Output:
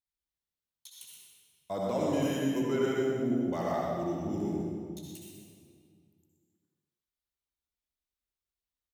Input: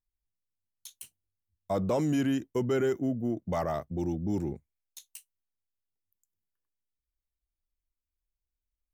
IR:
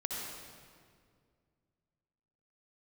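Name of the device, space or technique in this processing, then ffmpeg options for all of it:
PA in a hall: -filter_complex "[0:a]highpass=frequency=170:poles=1,equalizer=frequency=3700:width_type=o:width=0.52:gain=5,aecho=1:1:124:0.398[link_01];[1:a]atrim=start_sample=2205[link_02];[link_01][link_02]afir=irnorm=-1:irlink=0,asettb=1/sr,asplit=3[link_03][link_04][link_05];[link_03]atrim=end=2.224[link_06];[link_04]atrim=start=2.22:end=2.63,asetpts=PTS-STARTPTS,afade=type=in:duration=0.004:curve=qsin,afade=type=out:start_time=0.406:duration=0.004:curve=qsin,highshelf=frequency=9200:gain=11[link_07];[link_05]atrim=start=2.626[link_08];[link_06][link_07]acrossfade=duration=0.004:curve1=hsin:curve2=qsin[link_09];[link_09][link_08]acrossfade=duration=0.004:curve1=qsin:curve2=hsin,volume=-3.5dB"

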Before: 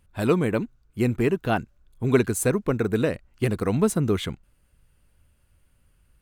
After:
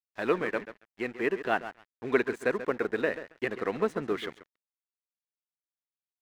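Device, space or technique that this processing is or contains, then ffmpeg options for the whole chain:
pocket radio on a weak battery: -filter_complex "[0:a]asettb=1/sr,asplit=3[link_01][link_02][link_03];[link_01]atrim=end=0.444[link_04];[link_02]atrim=start=0.44:end=1.21,asetpts=PTS-STARTPTS,afade=type=in:duration=0.004:curve=qsin,afade=type=out:start_time=0.766:duration=0.004:curve=qsin,lowshelf=frequency=500:gain=-4[link_05];[link_03]atrim=start=1.206[link_06];[link_04][link_05]acrossfade=duration=0.004:curve1=hsin:curve2=qsin[link_07];[link_07][link_06]acrossfade=duration=0.004:curve1=qsin:curve2=hsin,highpass=370,lowpass=3200,asplit=2[link_08][link_09];[link_09]adelay=136,lowpass=frequency=2700:poles=1,volume=-11dB,asplit=2[link_10][link_11];[link_11]adelay=136,lowpass=frequency=2700:poles=1,volume=0.26,asplit=2[link_12][link_13];[link_13]adelay=136,lowpass=frequency=2700:poles=1,volume=0.26[link_14];[link_08][link_10][link_12][link_14]amix=inputs=4:normalize=0,aeval=exprs='sgn(val(0))*max(abs(val(0))-0.00562,0)':channel_layout=same,equalizer=frequency=1800:width_type=o:width=0.35:gain=8,volume=-2.5dB"

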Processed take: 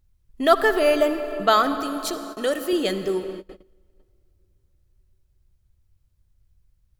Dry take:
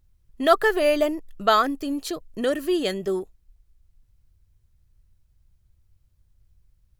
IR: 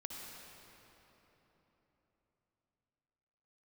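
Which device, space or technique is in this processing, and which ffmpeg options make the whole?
keyed gated reverb: -filter_complex "[0:a]asettb=1/sr,asplit=3[link_01][link_02][link_03];[link_01]atrim=end=1.824[link_04];[link_02]atrim=start=1.82:end=2.73,asetpts=PTS-STARTPTS,afade=type=in:duration=0.004:curve=qsin,afade=type=out:start_time=0.906:duration=0.004:curve=qsin,bass=frequency=250:gain=-12,treble=frequency=4000:gain=4[link_05];[link_03]atrim=start=2.726[link_06];[link_04][link_05]acrossfade=duration=0.004:curve1=hsin:curve2=qsin[link_07];[link_07][link_06]acrossfade=duration=0.004:curve1=qsin:curve2=hsin,asplit=3[link_08][link_09][link_10];[1:a]atrim=start_sample=2205[link_11];[link_09][link_11]afir=irnorm=-1:irlink=0[link_12];[link_10]apad=whole_len=308366[link_13];[link_12][link_13]sidechaingate=range=-26dB:threshold=-50dB:ratio=16:detection=peak,volume=-2.5dB[link_14];[link_08][link_14]amix=inputs=2:normalize=0,volume=-2dB"

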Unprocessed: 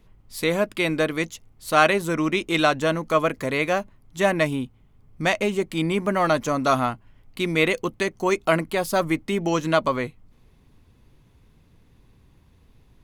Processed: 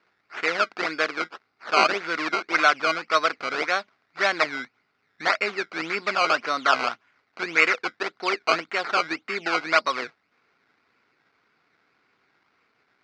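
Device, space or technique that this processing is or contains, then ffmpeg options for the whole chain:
circuit-bent sampling toy: -af "acrusher=samples=17:mix=1:aa=0.000001:lfo=1:lforange=17:lforate=1.8,highpass=550,equalizer=frequency=560:width_type=q:width=4:gain=-5,equalizer=frequency=920:width_type=q:width=4:gain=-4,equalizer=frequency=1400:width_type=q:width=4:gain=9,equalizer=frequency=2200:width_type=q:width=4:gain=7,equalizer=frequency=3200:width_type=q:width=4:gain=-4,equalizer=frequency=4700:width_type=q:width=4:gain=4,lowpass=frequency=5000:width=0.5412,lowpass=frequency=5000:width=1.3066"

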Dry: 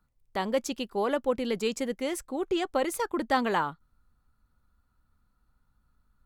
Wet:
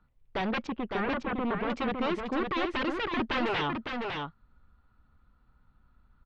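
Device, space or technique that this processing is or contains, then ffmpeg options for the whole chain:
synthesiser wavefolder: -filter_complex "[0:a]aeval=exprs='0.0335*(abs(mod(val(0)/0.0335+3,4)-2)-1)':channel_layout=same,lowpass=frequency=3500:width=0.5412,lowpass=frequency=3500:width=1.3066,asettb=1/sr,asplit=3[link_01][link_02][link_03];[link_01]atrim=end=0.674[link_04];[link_02]atrim=start=0.67:end=1.7,asetpts=PTS-STARTPTS,afade=type=in:duration=0.004:curve=qsin,afade=type=out:start_time=1.026:duration=0.004:curve=qsin,lowpass=1700[link_05];[link_03]atrim=start=1.696[link_06];[link_04][link_05]acrossfade=duration=0.004:curve1=hsin:curve2=qsin[link_07];[link_07][link_06]acrossfade=duration=0.004:curve1=qsin:curve2=hsin,aecho=1:1:557:0.596,volume=5dB"

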